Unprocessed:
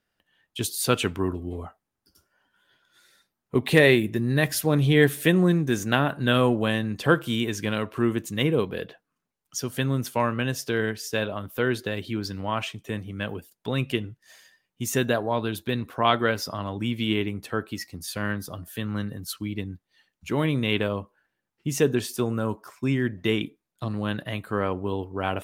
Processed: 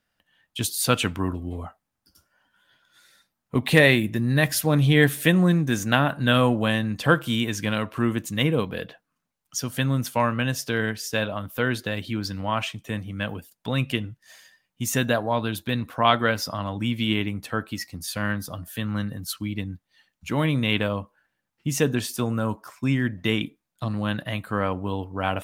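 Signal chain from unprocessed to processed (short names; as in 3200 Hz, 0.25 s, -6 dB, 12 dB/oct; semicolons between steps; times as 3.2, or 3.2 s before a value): bell 390 Hz -9.5 dB 0.38 oct; gain +2.5 dB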